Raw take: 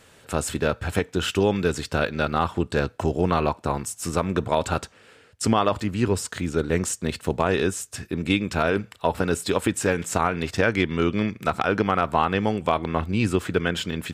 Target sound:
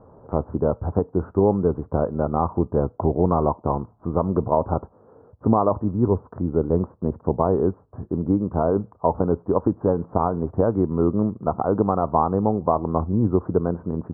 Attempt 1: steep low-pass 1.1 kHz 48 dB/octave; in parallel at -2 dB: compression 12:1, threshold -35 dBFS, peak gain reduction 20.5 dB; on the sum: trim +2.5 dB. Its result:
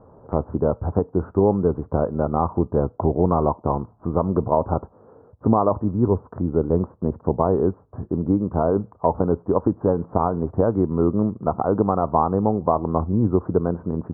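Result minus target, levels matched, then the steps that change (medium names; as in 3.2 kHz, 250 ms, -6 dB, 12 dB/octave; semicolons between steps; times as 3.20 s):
compression: peak gain reduction -10.5 dB
change: compression 12:1, threshold -46.5 dBFS, peak gain reduction 31 dB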